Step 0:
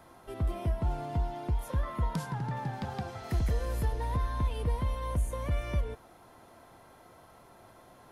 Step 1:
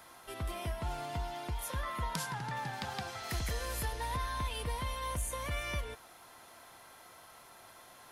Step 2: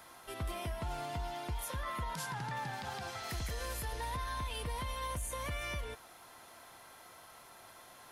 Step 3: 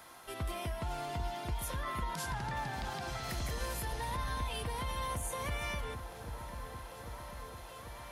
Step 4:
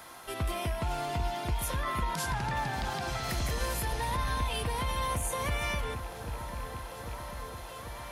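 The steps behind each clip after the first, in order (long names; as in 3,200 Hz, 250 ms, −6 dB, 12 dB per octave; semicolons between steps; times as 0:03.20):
tilt shelving filter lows −8.5 dB, about 930 Hz
brickwall limiter −30 dBFS, peak gain reduction 10 dB
echo whose low-pass opens from repeat to repeat 794 ms, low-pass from 400 Hz, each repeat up 1 octave, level −6 dB; level +1 dB
loose part that buzzes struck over −40 dBFS, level −44 dBFS; level +5.5 dB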